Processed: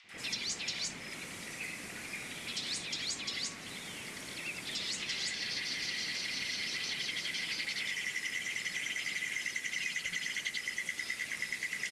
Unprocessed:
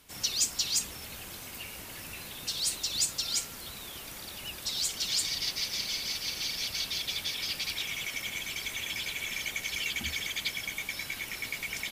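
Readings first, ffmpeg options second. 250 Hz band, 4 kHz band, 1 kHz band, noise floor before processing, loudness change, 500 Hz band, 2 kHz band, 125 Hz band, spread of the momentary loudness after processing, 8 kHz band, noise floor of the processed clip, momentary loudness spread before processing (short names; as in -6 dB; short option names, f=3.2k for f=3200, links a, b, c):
-0.5 dB, -5.0 dB, -3.5 dB, -44 dBFS, -4.0 dB, -2.5 dB, +1.0 dB, -5.0 dB, 7 LU, -7.5 dB, -45 dBFS, 12 LU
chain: -filter_complex "[0:a]lowshelf=f=340:t=q:w=3:g=-8.5,acrossover=split=1200|3600[a][b][c];[a]adelay=40[d];[c]adelay=90[e];[d][b][e]amix=inputs=3:normalize=0,acrossover=split=110|4600[f][g][h];[h]acompressor=mode=upward:threshold=-54dB:ratio=2.5[i];[f][g][i]amix=inputs=3:normalize=0,lowpass=f=10k:w=0.5412,lowpass=f=10k:w=1.3066,equalizer=f=2.4k:t=o:w=0.48:g=8,afreqshift=-250,acrossover=split=2400|4800[j][k][l];[j]acompressor=threshold=-40dB:ratio=4[m];[k]acompressor=threshold=-40dB:ratio=4[n];[l]acompressor=threshold=-44dB:ratio=4[o];[m][n][o]amix=inputs=3:normalize=0"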